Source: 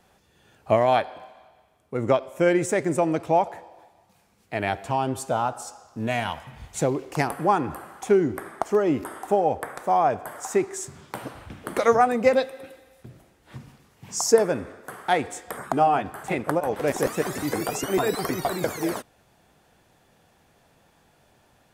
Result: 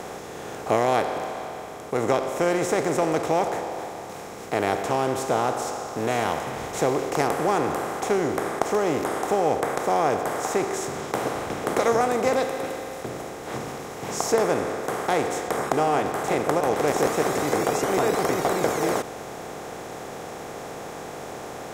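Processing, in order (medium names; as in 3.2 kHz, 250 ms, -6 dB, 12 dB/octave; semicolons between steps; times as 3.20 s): spectral levelling over time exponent 0.4; trim -7.5 dB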